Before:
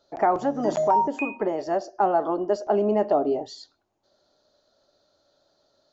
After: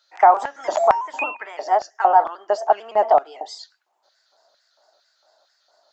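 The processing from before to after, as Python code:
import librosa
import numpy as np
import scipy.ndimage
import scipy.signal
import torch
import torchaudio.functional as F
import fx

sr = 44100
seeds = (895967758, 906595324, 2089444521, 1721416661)

y = fx.pitch_trill(x, sr, semitones=1.5, every_ms=112)
y = fx.filter_lfo_highpass(y, sr, shape='square', hz=2.2, low_hz=800.0, high_hz=1800.0, q=1.9)
y = y * 10.0 ** (5.0 / 20.0)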